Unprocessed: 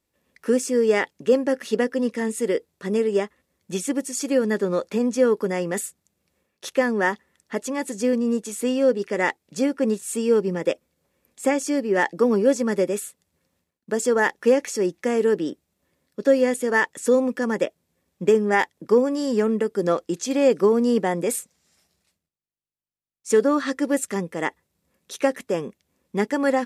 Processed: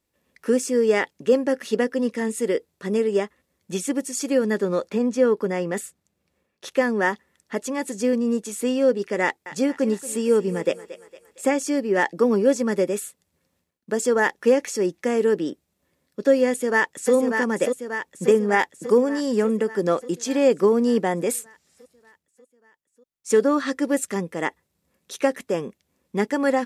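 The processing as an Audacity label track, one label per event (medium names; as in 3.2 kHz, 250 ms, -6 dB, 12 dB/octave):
4.890000	6.710000	treble shelf 5.2 kHz -7 dB
9.230000	11.470000	thinning echo 229 ms, feedback 53%, level -14 dB
16.480000	17.130000	echo throw 590 ms, feedback 65%, level -5 dB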